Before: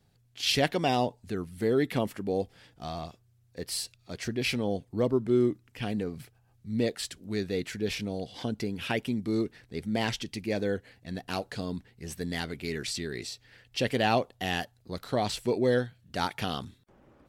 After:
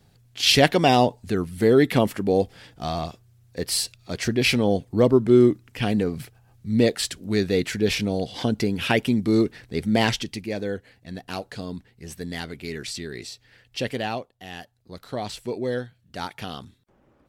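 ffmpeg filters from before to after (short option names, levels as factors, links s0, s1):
-af "volume=7.94,afade=t=out:st=10.01:d=0.49:silence=0.398107,afade=t=out:st=13.83:d=0.5:silence=0.251189,afade=t=in:st=14.33:d=0.78:silence=0.354813"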